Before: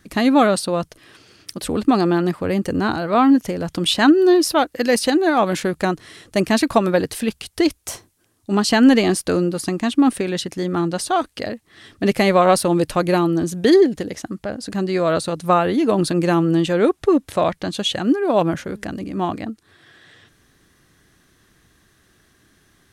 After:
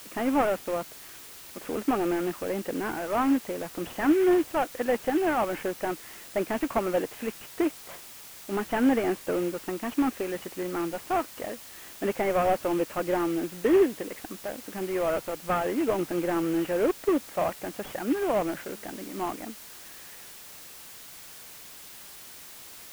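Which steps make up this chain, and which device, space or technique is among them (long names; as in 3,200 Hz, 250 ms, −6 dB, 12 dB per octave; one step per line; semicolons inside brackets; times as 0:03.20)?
army field radio (band-pass filter 310–3,000 Hz; variable-slope delta modulation 16 kbit/s; white noise bed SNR 17 dB)
level −5.5 dB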